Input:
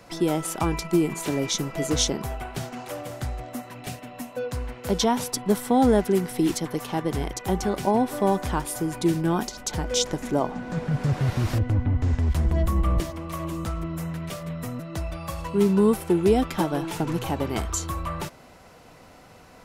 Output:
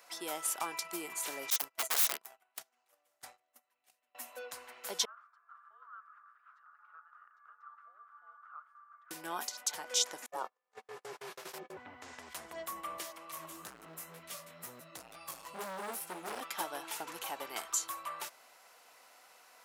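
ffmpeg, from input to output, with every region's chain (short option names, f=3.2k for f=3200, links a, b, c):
-filter_complex "[0:a]asettb=1/sr,asplit=3[a][b][c];[a]atrim=end=1.504[d];[b]atrim=start=1.5:end=4.15,asetpts=PTS-STARTPTS,afade=t=in:d=0.004:c=qsin,afade=t=out:st=2.646:d=0.004:c=qsin,aeval=exprs='(mod(10*val(0)+1,2)-1)/10':c=same,agate=range=-30dB:threshold=-29dB:ratio=16:release=100:detection=peak[e];[c]atrim=start=4.146[f];[d][e]acrossfade=d=0.004:c1=hsin:c2=qsin[g];[g][f]acrossfade=d=0.004:c1=qsin:c2=hsin,asettb=1/sr,asplit=3[h][i][j];[h]atrim=end=5.054[k];[i]atrim=start=5.05:end=9.11,asetpts=PTS-STARTPTS,afade=t=in:d=0.004:c=qsin,afade=t=out:st=4.056:d=0.004:c=qsin,asuperpass=centerf=1600:order=4:qfactor=5.9,afreqshift=-310[l];[j]atrim=start=9.106[m];[k][l]acrossfade=d=0.004:c1=hsin:c2=qsin[n];[n][m]acrossfade=d=0.004:c1=qsin:c2=hsin,asettb=1/sr,asplit=3[o][p][q];[o]atrim=end=10.264[r];[p]atrim=start=10.26:end=11.77,asetpts=PTS-STARTPTS,afade=t=in:d=0.004:c=qsin,afade=t=out:st=1.506:d=0.004:c=qsin,bandreject=f=60:t=h:w=6,bandreject=f=120:t=h:w=6,bandreject=f=180:t=h:w=6,bandreject=f=240:t=h:w=6,bandreject=f=300:t=h:w=6,bandreject=f=360:t=h:w=6,bandreject=f=420:t=h:w=6,agate=range=-37dB:threshold=-28dB:ratio=16:release=100:detection=peak,aeval=exprs='val(0)*sin(2*PI*270*n/s)':c=same[s];[q]atrim=start=11.766[t];[r][s]acrossfade=d=0.004:c1=hsin:c2=qsin[u];[u][t]acrossfade=d=0.004:c1=qsin:c2=hsin,asettb=1/sr,asplit=3[v][w][x];[v]atrim=end=13.324[y];[w]atrim=start=13.32:end=16.41,asetpts=PTS-STARTPTS,afade=t=in:d=0.004:c=qsin,afade=t=out:st=3.086:d=0.004:c=qsin,bass=f=250:g=15,treble=f=4k:g=3,flanger=delay=15.5:depth=5.5:speed=2.1,asoftclip=type=hard:threshold=-20.5dB[z];[x]atrim=start=16.406[aa];[y][z]acrossfade=d=0.004:c1=hsin:c2=qsin[ab];[ab][aa]acrossfade=d=0.004:c1=qsin:c2=hsin,highpass=840,highshelf=f=8.5k:g=9.5,volume=-7dB"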